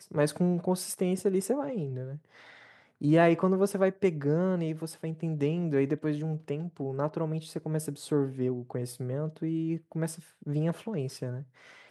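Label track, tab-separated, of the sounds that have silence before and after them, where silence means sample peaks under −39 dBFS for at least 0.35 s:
3.010000	11.430000	sound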